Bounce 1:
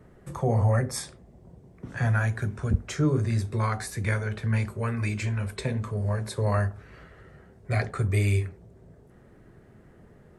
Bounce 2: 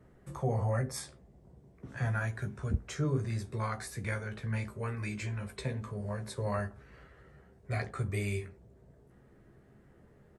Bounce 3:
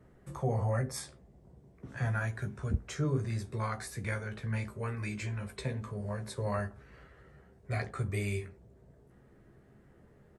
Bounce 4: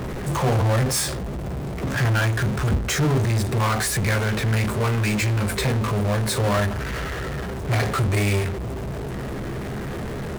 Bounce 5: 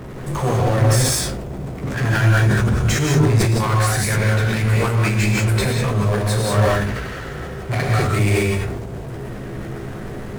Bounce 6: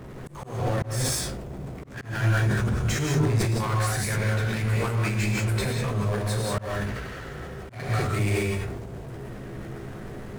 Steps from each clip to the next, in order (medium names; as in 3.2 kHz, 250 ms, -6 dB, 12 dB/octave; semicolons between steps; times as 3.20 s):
doubling 15 ms -7 dB; trim -7.5 dB
no audible change
power-law waveshaper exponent 0.35; trim +4 dB
power-law waveshaper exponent 1.4; gated-style reverb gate 220 ms rising, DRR -1.5 dB; decay stretcher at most 33 dB/s; trim +1 dB
slow attack 238 ms; trim -7.5 dB